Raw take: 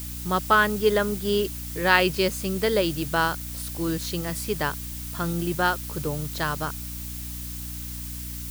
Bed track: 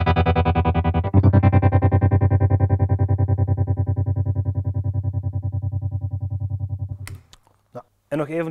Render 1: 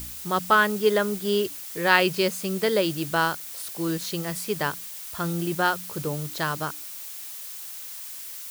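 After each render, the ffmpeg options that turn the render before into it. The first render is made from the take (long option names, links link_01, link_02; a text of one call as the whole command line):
ffmpeg -i in.wav -af "bandreject=frequency=60:width_type=h:width=4,bandreject=frequency=120:width_type=h:width=4,bandreject=frequency=180:width_type=h:width=4,bandreject=frequency=240:width_type=h:width=4,bandreject=frequency=300:width_type=h:width=4" out.wav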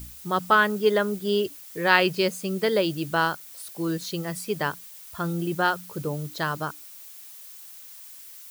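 ffmpeg -i in.wav -af "afftdn=noise_reduction=8:noise_floor=-38" out.wav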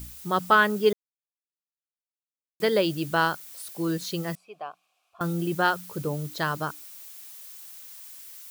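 ffmpeg -i in.wav -filter_complex "[0:a]asettb=1/sr,asplit=3[link_01][link_02][link_03];[link_01]atrim=end=4.354[link_04];[link_02]atrim=start=4.35:end=5.21,asetpts=PTS-STARTPTS,afade=type=in:duration=0.004:curve=qsin,afade=type=out:start_time=0.856:duration=0.004:curve=qsin,asplit=3[link_05][link_06][link_07];[link_05]bandpass=frequency=730:width_type=q:width=8,volume=0dB[link_08];[link_06]bandpass=frequency=1090:width_type=q:width=8,volume=-6dB[link_09];[link_07]bandpass=frequency=2440:width_type=q:width=8,volume=-9dB[link_10];[link_08][link_09][link_10]amix=inputs=3:normalize=0[link_11];[link_03]atrim=start=5.206[link_12];[link_04][link_11]acrossfade=duration=0.004:curve1=hsin:curve2=qsin[link_13];[link_13][link_12]acrossfade=duration=0.004:curve1=qsin:curve2=hsin,asplit=3[link_14][link_15][link_16];[link_14]atrim=end=0.93,asetpts=PTS-STARTPTS,afade=type=out:start_time=0.926:duration=0.004:curve=hsin[link_17];[link_15]atrim=start=0.93:end=2.6,asetpts=PTS-STARTPTS,volume=0[link_18];[link_16]atrim=start=2.6,asetpts=PTS-STARTPTS,afade=type=in:duration=0.004:curve=hsin[link_19];[link_17][link_18][link_19]concat=n=3:v=0:a=1" out.wav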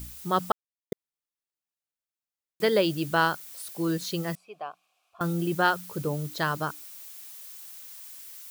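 ffmpeg -i in.wav -filter_complex "[0:a]asplit=3[link_01][link_02][link_03];[link_01]atrim=end=0.52,asetpts=PTS-STARTPTS,afade=type=out:start_time=0.516:duration=0.004:curve=hsin[link_04];[link_02]atrim=start=0.52:end=0.92,asetpts=PTS-STARTPTS,volume=0[link_05];[link_03]atrim=start=0.92,asetpts=PTS-STARTPTS,afade=type=in:duration=0.004:curve=hsin[link_06];[link_04][link_05][link_06]concat=n=3:v=0:a=1" out.wav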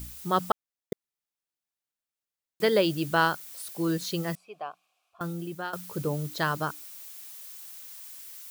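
ffmpeg -i in.wav -filter_complex "[0:a]asplit=2[link_01][link_02];[link_01]atrim=end=5.73,asetpts=PTS-STARTPTS,afade=type=out:start_time=4.68:duration=1.05:silence=0.177828[link_03];[link_02]atrim=start=5.73,asetpts=PTS-STARTPTS,afade=type=in:duration=0.004:curve=hsin:silence=0.177828[link_04];[link_03][link_04]concat=n=2:v=0:a=1" out.wav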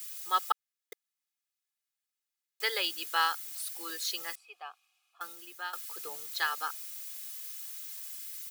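ffmpeg -i in.wav -af "highpass=1400,aecho=1:1:2.4:0.73" out.wav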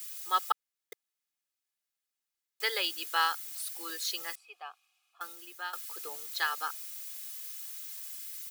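ffmpeg -i in.wav -af "equalizer=frequency=130:width_type=o:width=0.36:gain=-14" out.wav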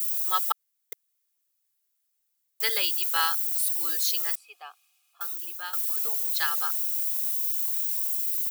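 ffmpeg -i in.wav -af "highpass=130,aemphasis=mode=production:type=50kf" out.wav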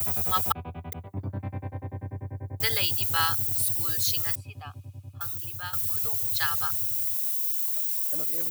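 ffmpeg -i in.wav -i bed.wav -filter_complex "[1:a]volume=-19.5dB[link_01];[0:a][link_01]amix=inputs=2:normalize=0" out.wav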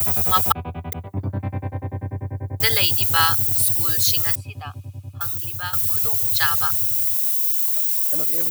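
ffmpeg -i in.wav -af "volume=7.5dB" out.wav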